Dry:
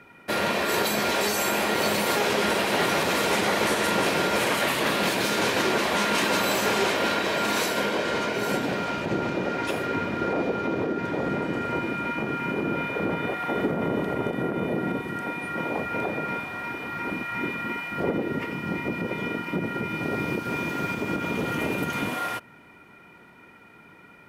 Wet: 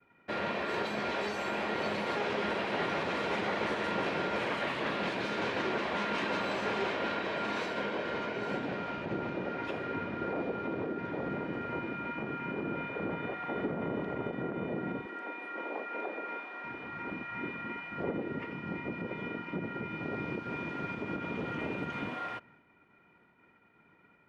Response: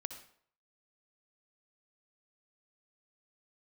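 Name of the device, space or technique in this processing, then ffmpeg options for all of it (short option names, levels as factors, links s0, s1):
hearing-loss simulation: -filter_complex "[0:a]lowpass=3100,agate=range=0.0224:threshold=0.00501:ratio=3:detection=peak,asettb=1/sr,asplit=3[s0][s1][s2];[s0]atrim=end=15.064[s3];[s1]atrim=start=15.06:end=16.64,asetpts=PTS-STARTPTS,afade=t=in:d=0.004:c=qsin,afade=t=out:st=1.576:d=0.004:c=qsin,highpass=f=300:w=0.5412,highpass=f=300:w=1.3066[s4];[s2]atrim=start=16.636[s5];[s3][s4]acrossfade=d=0.004:c1=hsin:c2=qsin[s6];[s6][s5]acrossfade=d=0.004:c1=qsin:c2=hsin,volume=0.376"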